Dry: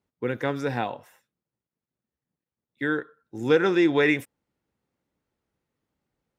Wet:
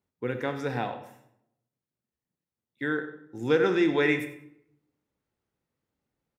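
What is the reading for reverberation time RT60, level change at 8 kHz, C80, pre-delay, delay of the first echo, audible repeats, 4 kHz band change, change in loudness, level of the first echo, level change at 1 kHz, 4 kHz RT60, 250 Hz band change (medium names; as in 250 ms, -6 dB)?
0.80 s, no reading, 11.5 dB, 23 ms, 96 ms, 1, -3.0 dB, -3.0 dB, -16.0 dB, -2.5 dB, 0.50 s, -3.0 dB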